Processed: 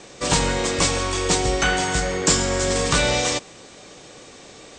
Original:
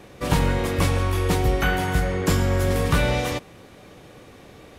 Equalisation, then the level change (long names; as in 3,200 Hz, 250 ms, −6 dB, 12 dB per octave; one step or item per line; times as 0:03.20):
Butterworth low-pass 8,500 Hz 96 dB per octave
bass and treble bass −6 dB, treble +14 dB
parametric band 86 Hz −8.5 dB 0.29 octaves
+2.5 dB